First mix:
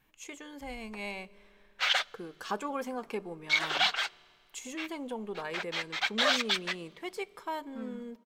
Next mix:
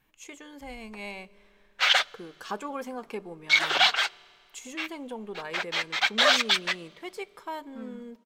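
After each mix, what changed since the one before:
background +6.0 dB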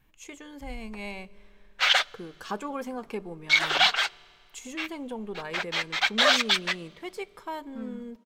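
speech: add low shelf 150 Hz +11 dB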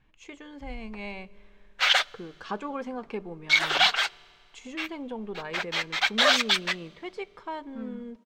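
speech: add LPF 4200 Hz 12 dB/oct

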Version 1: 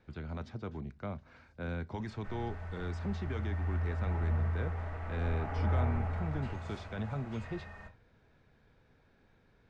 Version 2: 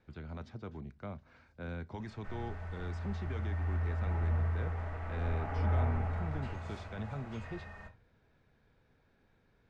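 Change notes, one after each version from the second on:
speech -3.5 dB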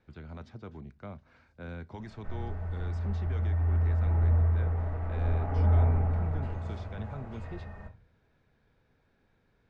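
background: add tilt shelf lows +7.5 dB, about 1100 Hz

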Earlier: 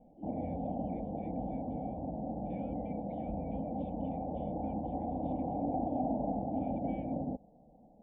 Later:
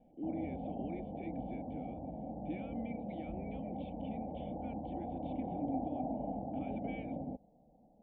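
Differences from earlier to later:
speech +8.5 dB; background -5.0 dB

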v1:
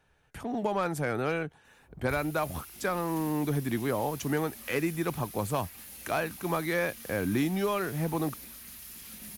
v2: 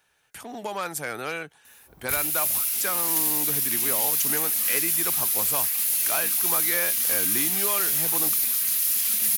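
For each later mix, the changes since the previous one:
background +11.0 dB; master: add tilt +3.5 dB/oct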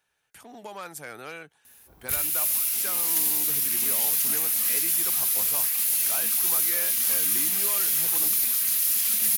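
speech -8.0 dB

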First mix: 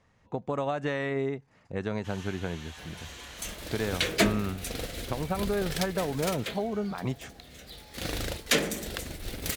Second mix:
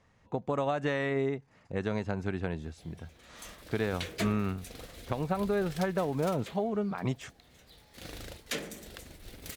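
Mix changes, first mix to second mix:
first sound: muted; second sound -11.0 dB

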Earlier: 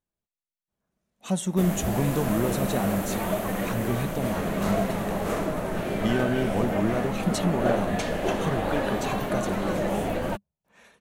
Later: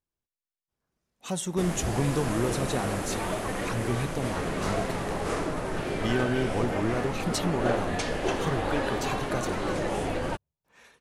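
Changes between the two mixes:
background: add steep low-pass 11000 Hz 48 dB/oct; master: add thirty-one-band EQ 200 Hz -10 dB, 630 Hz -6 dB, 5000 Hz +5 dB

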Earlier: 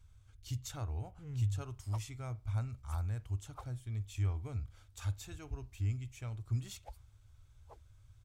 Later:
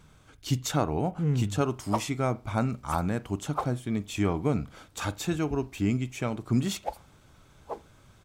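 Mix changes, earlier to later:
background: send on; master: remove EQ curve 110 Hz 0 dB, 160 Hz -26 dB, 7000 Hz -12 dB

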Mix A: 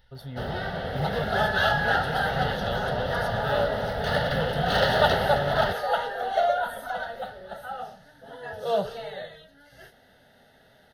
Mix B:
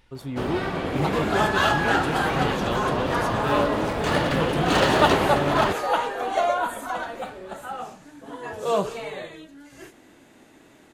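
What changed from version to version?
master: remove fixed phaser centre 1600 Hz, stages 8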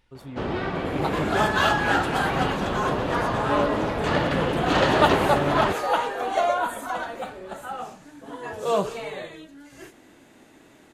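speech -6.5 dB; first sound: add air absorption 97 m

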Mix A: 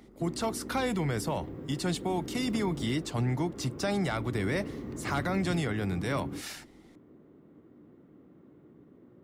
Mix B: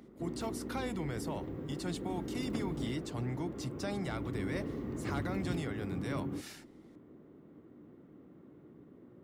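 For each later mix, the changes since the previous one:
speech -8.5 dB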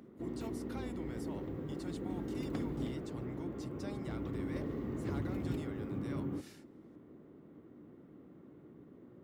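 speech -9.5 dB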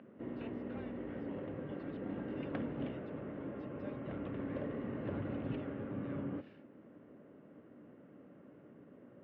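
speech -9.0 dB; master: add speaker cabinet 110–3000 Hz, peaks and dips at 150 Hz -3 dB, 350 Hz -6 dB, 580 Hz +8 dB, 1600 Hz +6 dB, 2800 Hz +7 dB

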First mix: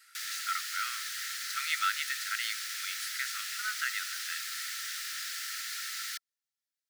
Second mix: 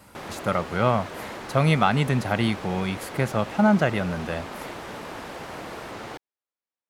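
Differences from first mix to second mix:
background: add band-pass 680 Hz, Q 0.53; master: remove rippled Chebyshev high-pass 1300 Hz, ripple 6 dB

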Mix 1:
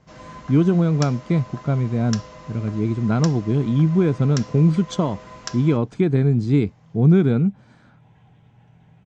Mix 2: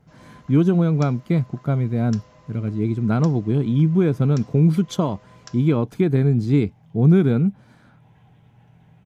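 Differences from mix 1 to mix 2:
first sound -11.0 dB; master: remove steep low-pass 8400 Hz 48 dB/oct

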